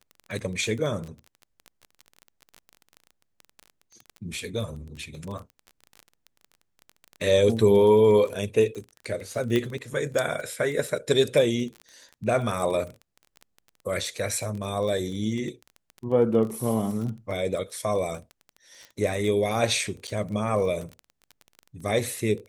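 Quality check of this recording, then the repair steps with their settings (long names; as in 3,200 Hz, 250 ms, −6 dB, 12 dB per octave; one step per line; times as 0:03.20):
surface crackle 22 per second −32 dBFS
0:09.56: click −13 dBFS
0:20.07–0:20.08: drop-out 7.4 ms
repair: click removal
repair the gap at 0:20.07, 7.4 ms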